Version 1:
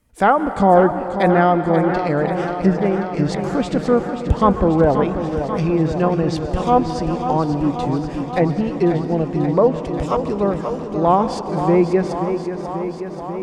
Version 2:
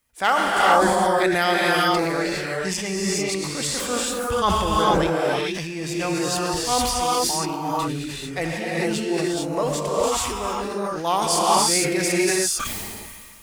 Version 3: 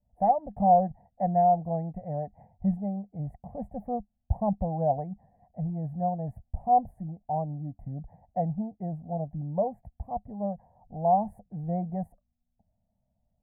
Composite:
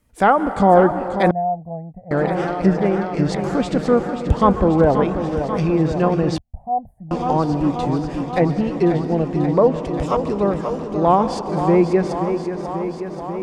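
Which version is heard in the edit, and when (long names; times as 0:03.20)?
1
0:01.31–0:02.11: punch in from 3
0:06.38–0:07.11: punch in from 3
not used: 2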